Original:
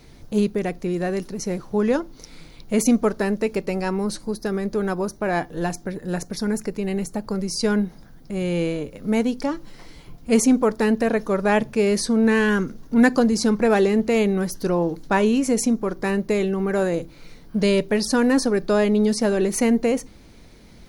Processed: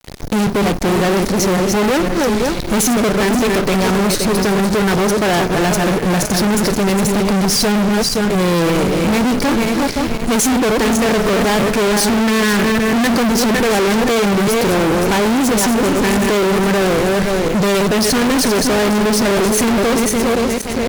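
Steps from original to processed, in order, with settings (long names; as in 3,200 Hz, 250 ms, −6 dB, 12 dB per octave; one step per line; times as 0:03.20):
feedback delay that plays each chunk backwards 261 ms, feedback 52%, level −7.5 dB
fuzz pedal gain 40 dB, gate −42 dBFS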